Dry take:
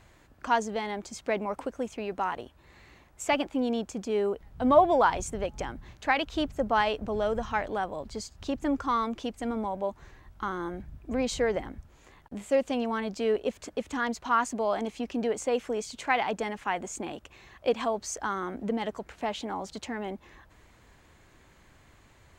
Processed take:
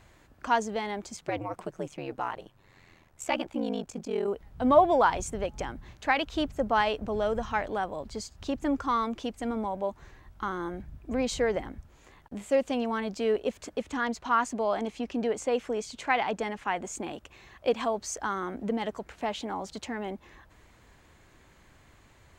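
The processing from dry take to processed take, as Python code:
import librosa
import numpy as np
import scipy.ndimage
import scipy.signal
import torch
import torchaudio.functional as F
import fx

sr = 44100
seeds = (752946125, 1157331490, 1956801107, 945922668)

y = fx.ring_mod(x, sr, carrier_hz=fx.line((1.16, 110.0), (4.26, 20.0)), at=(1.16, 4.26), fade=0.02)
y = fx.high_shelf(y, sr, hz=9700.0, db=-6.5, at=(13.82, 16.85))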